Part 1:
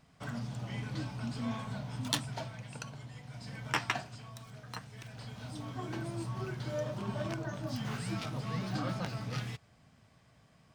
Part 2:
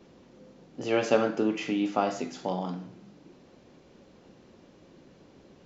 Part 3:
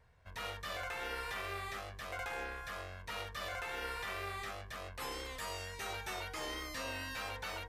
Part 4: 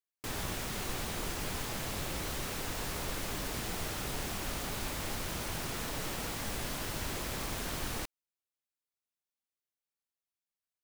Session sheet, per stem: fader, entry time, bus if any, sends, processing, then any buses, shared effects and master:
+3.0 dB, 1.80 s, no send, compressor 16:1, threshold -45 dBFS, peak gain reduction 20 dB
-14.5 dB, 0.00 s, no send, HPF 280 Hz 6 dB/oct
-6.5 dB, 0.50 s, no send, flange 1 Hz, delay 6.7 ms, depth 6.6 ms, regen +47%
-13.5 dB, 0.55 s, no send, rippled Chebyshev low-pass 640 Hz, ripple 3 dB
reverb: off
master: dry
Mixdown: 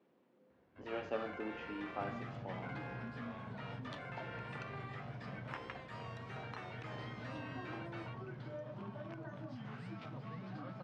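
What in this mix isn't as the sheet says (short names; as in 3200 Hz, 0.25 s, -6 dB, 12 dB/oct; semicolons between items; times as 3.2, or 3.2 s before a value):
stem 3: missing flange 1 Hz, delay 6.7 ms, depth 6.6 ms, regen +47%; master: extra BPF 110–2400 Hz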